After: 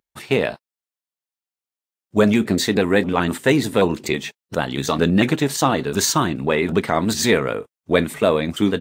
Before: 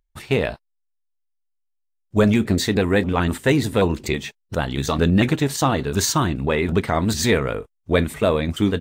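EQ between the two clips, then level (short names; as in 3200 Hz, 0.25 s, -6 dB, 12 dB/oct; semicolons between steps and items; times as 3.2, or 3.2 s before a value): HPF 160 Hz 12 dB/oct; +2.0 dB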